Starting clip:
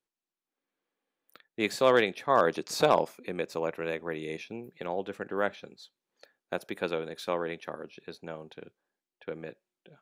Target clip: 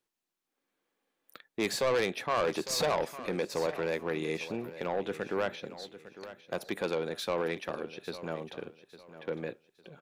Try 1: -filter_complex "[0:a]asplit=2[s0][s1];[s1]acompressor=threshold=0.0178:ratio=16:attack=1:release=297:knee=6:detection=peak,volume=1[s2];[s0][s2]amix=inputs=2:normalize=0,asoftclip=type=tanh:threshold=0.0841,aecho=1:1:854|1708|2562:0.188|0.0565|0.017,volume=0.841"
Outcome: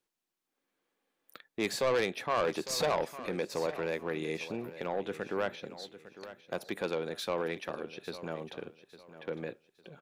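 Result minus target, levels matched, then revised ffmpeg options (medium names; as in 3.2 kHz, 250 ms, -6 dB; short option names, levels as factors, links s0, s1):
compression: peak gain reduction +10.5 dB
-filter_complex "[0:a]asplit=2[s0][s1];[s1]acompressor=threshold=0.0631:ratio=16:attack=1:release=297:knee=6:detection=peak,volume=1[s2];[s0][s2]amix=inputs=2:normalize=0,asoftclip=type=tanh:threshold=0.0841,aecho=1:1:854|1708|2562:0.188|0.0565|0.017,volume=0.841"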